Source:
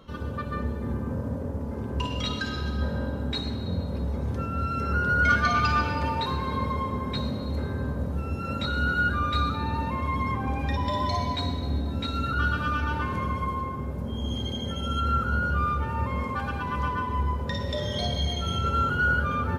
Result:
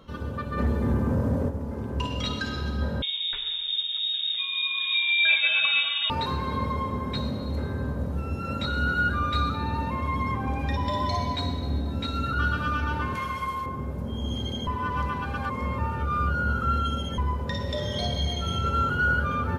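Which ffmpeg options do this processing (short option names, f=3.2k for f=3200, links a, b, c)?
-filter_complex "[0:a]asplit=3[a][b][c];[a]afade=t=out:st=0.57:d=0.02[d];[b]aeval=exprs='0.141*sin(PI/2*1.41*val(0)/0.141)':c=same,afade=t=in:st=0.57:d=0.02,afade=t=out:st=1.48:d=0.02[e];[c]afade=t=in:st=1.48:d=0.02[f];[d][e][f]amix=inputs=3:normalize=0,asettb=1/sr,asplit=3[g][h][i];[g]atrim=end=3.024[j];[h]atrim=start=3.02:end=6.1,asetpts=PTS-STARTPTS,afade=t=in:d=0.004:c=qsin,afade=t=out:st=3.076:d=0.004:c=qsin,lowpass=f=3.2k:t=q:w=0.5098,lowpass=f=3.2k:t=q:w=0.6013,lowpass=f=3.2k:t=q:w=0.9,lowpass=f=3.2k:t=q:w=2.563,afreqshift=-3800[k];[i]atrim=start=6.096[l];[j][k]acrossfade=d=0.004:c1=hsin:c2=qsin[m];[m][l]acrossfade=d=0.004:c1=qsin:c2=hsin,asettb=1/sr,asplit=3[n][o][p];[n]atrim=end=13.154[q];[o]atrim=start=13.15:end=13.66,asetpts=PTS-STARTPTS,afade=t=in:d=0.004:c=qsin,afade=t=out:st=0.506:d=0.004:c=qsin,tiltshelf=f=970:g=-8[r];[p]atrim=start=13.656[s];[q][r]acrossfade=d=0.004:c1=hsin:c2=qsin[t];[t][s]acrossfade=d=0.004:c1=qsin:c2=hsin,asplit=3[u][v][w];[u]atrim=end=14.672[x];[v]atrim=start=14.668:end=17.182,asetpts=PTS-STARTPTS,areverse[y];[w]atrim=start=17.178[z];[x][y]acrossfade=d=0.004:c1=hsin:c2=hsin[aa];[aa][z]acrossfade=d=0.004:c1=hsin:c2=hsin"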